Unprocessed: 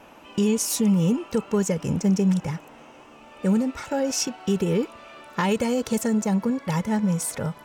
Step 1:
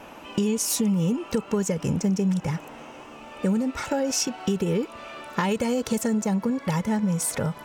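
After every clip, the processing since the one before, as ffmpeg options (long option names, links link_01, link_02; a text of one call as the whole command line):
ffmpeg -i in.wav -af "acompressor=threshold=-28dB:ratio=3,volume=5dB" out.wav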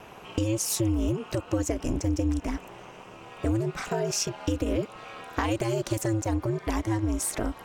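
ffmpeg -i in.wav -af "aeval=exprs='val(0)*sin(2*PI*110*n/s)':channel_layout=same" out.wav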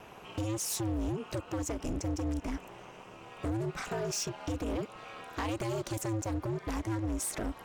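ffmpeg -i in.wav -af "asoftclip=type=hard:threshold=-25dB,volume=-4dB" out.wav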